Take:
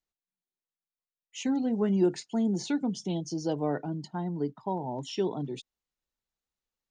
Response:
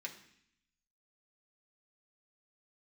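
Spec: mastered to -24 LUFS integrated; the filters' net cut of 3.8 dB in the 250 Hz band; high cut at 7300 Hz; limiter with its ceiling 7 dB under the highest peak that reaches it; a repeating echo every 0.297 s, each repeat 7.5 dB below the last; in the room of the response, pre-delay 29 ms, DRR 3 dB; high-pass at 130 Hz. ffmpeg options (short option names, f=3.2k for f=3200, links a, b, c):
-filter_complex "[0:a]highpass=130,lowpass=7.3k,equalizer=f=250:t=o:g=-4.5,alimiter=limit=-24dB:level=0:latency=1,aecho=1:1:297|594|891|1188|1485:0.422|0.177|0.0744|0.0312|0.0131,asplit=2[a][b];[1:a]atrim=start_sample=2205,adelay=29[c];[b][c]afir=irnorm=-1:irlink=0,volume=-1.5dB[d];[a][d]amix=inputs=2:normalize=0,volume=9dB"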